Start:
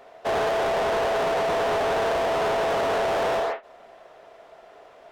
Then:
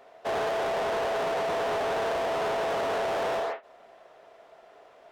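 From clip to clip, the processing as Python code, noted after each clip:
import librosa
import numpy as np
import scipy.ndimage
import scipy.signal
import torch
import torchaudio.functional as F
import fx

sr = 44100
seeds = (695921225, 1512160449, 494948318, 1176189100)

y = fx.low_shelf(x, sr, hz=79.0, db=-6.5)
y = F.gain(torch.from_numpy(y), -4.5).numpy()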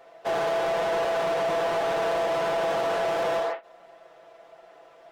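y = x + 0.68 * np.pad(x, (int(6.0 * sr / 1000.0), 0))[:len(x)]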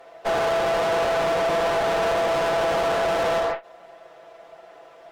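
y = fx.tube_stage(x, sr, drive_db=25.0, bias=0.6)
y = F.gain(torch.from_numpy(y), 7.5).numpy()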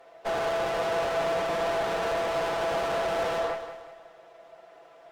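y = fx.echo_feedback(x, sr, ms=184, feedback_pct=41, wet_db=-10.5)
y = F.gain(torch.from_numpy(y), -6.0).numpy()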